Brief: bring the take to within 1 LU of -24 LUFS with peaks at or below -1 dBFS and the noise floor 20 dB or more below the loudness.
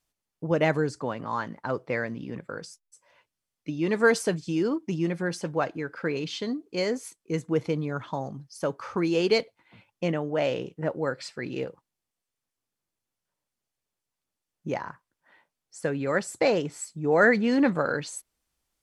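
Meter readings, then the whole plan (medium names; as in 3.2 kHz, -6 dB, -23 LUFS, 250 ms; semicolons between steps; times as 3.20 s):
loudness -28.0 LUFS; peak level -8.5 dBFS; loudness target -24.0 LUFS
-> trim +4 dB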